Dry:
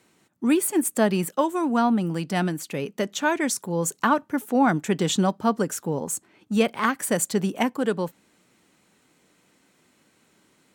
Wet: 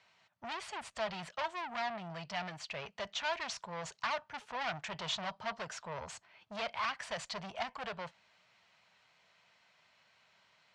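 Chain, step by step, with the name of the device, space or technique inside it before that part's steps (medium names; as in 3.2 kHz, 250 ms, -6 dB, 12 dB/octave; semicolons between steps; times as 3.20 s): scooped metal amplifier (valve stage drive 29 dB, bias 0.4; cabinet simulation 87–4600 Hz, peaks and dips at 650 Hz +10 dB, 970 Hz +5 dB, 3.7 kHz -3 dB; amplifier tone stack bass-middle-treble 10-0-10); trim +4 dB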